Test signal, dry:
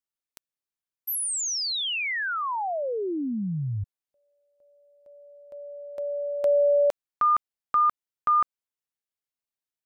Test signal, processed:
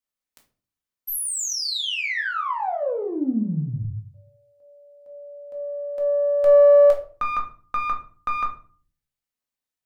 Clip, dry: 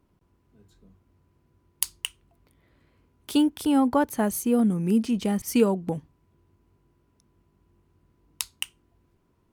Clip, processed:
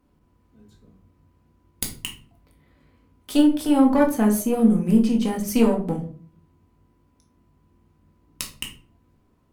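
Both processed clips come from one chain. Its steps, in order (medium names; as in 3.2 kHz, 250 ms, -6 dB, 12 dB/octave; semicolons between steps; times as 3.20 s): single-diode clipper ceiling -19.5 dBFS; simulated room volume 330 m³, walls furnished, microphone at 2 m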